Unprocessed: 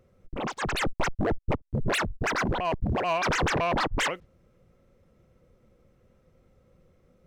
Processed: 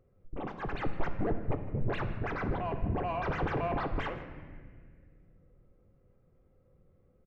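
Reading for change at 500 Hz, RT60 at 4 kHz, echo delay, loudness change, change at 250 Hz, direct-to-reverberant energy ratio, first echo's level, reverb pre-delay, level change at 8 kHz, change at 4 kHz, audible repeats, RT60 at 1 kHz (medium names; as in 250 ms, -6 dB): -5.5 dB, 1.2 s, 157 ms, -7.0 dB, -5.0 dB, 5.5 dB, -18.5 dB, 3 ms, under -30 dB, -17.0 dB, 1, 1.5 s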